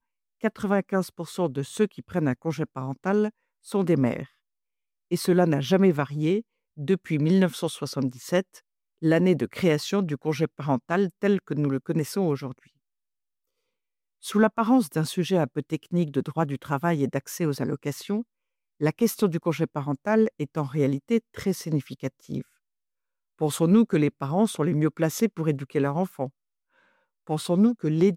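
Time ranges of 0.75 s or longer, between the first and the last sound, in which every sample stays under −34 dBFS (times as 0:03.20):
0:04.24–0:05.11
0:12.52–0:14.25
0:22.41–0:23.41
0:26.28–0:27.29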